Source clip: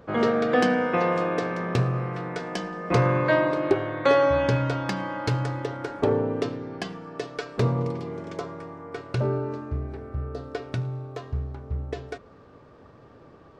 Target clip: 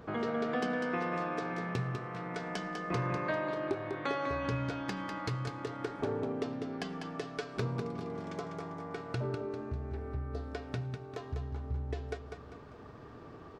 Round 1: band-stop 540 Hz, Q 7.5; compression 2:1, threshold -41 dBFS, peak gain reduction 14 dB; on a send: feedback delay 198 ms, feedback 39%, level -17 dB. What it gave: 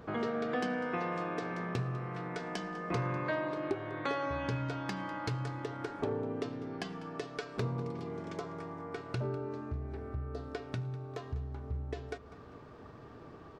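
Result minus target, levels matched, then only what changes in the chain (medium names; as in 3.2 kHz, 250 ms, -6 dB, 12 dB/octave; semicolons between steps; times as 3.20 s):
echo-to-direct -11 dB
change: feedback delay 198 ms, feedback 39%, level -6 dB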